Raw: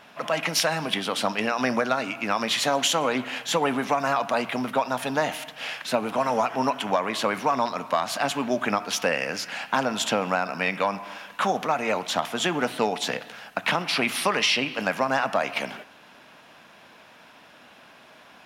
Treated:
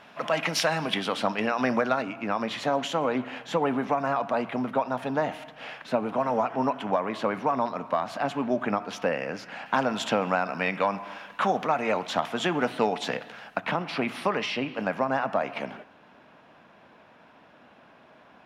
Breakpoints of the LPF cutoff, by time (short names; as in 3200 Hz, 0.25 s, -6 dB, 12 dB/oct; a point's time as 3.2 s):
LPF 6 dB/oct
4000 Hz
from 1.16 s 2100 Hz
from 2.02 s 1000 Hz
from 9.66 s 2400 Hz
from 13.6 s 1000 Hz